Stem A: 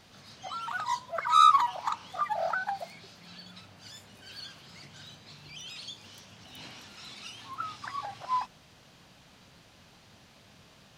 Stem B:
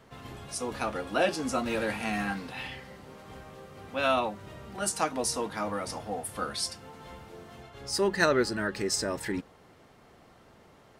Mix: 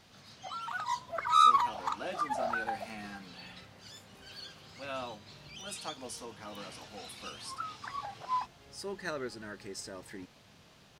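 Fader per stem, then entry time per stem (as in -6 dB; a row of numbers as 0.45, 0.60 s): -3.0, -13.5 dB; 0.00, 0.85 s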